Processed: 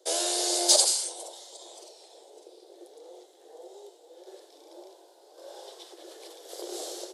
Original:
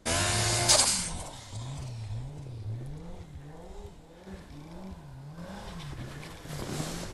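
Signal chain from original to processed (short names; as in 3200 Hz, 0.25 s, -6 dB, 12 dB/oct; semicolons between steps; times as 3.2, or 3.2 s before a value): rippled Chebyshev high-pass 340 Hz, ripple 3 dB; band shelf 1600 Hz -15.5 dB; gain +5 dB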